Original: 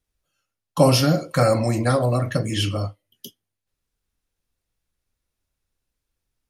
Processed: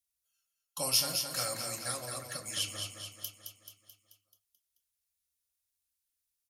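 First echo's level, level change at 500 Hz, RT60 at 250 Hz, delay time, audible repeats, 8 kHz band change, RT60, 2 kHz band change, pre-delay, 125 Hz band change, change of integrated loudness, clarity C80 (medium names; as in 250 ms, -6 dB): -6.0 dB, -22.0 dB, no reverb, 217 ms, 6, 0.0 dB, no reverb, -11.5 dB, no reverb, -26.5 dB, -13.0 dB, no reverb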